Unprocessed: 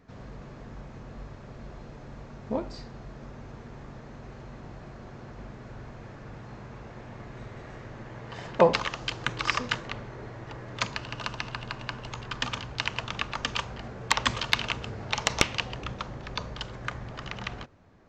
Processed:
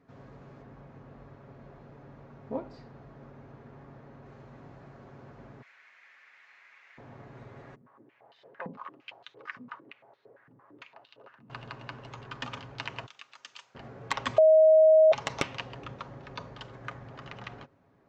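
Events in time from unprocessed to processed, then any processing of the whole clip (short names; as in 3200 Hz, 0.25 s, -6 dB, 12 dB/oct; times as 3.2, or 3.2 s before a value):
0.62–4.26 LPF 3700 Hz 6 dB/oct
5.62–6.98 resonant high-pass 2100 Hz, resonance Q 3.4
7.75–11.5 stepped band-pass 8.8 Hz 210–3800 Hz
13.06–13.75 differentiator
14.38–15.12 bleep 631 Hz -7 dBFS
whole clip: HPF 150 Hz 6 dB/oct; high shelf 2800 Hz -11 dB; comb 7.3 ms, depth 38%; gain -4 dB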